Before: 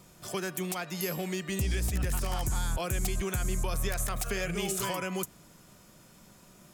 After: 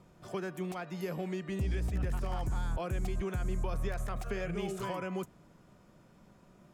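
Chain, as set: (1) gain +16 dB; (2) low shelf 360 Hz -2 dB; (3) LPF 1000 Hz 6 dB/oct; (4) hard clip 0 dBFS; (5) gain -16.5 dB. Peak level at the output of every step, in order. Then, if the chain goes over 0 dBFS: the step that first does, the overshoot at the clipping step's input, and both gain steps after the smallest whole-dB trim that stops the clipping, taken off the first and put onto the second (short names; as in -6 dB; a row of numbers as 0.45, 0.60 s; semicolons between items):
-2.5, -2.0, -5.5, -5.5, -22.0 dBFS; no overload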